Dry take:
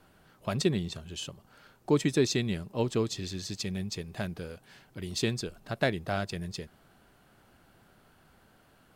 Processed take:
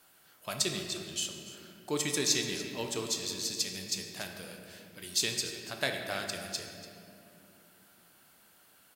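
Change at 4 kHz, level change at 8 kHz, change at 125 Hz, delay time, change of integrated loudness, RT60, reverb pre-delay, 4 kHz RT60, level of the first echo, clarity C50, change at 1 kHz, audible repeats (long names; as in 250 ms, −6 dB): +4.5 dB, +8.0 dB, −12.0 dB, 289 ms, −1.0 dB, 2.8 s, 7 ms, 1.5 s, −15.5 dB, 4.5 dB, −3.5 dB, 1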